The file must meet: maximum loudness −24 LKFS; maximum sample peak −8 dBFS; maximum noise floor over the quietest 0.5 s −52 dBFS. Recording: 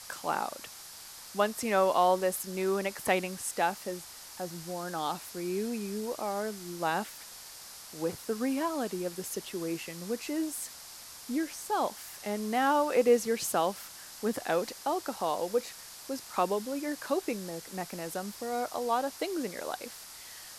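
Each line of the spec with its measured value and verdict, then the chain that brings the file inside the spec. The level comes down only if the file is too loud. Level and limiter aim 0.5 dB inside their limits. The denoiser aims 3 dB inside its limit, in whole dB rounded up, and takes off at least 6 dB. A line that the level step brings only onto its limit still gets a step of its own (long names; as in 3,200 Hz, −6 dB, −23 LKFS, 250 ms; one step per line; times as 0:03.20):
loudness −32.0 LKFS: in spec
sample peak −12.5 dBFS: in spec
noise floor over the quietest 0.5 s −48 dBFS: out of spec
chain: broadband denoise 7 dB, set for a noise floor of −48 dBFS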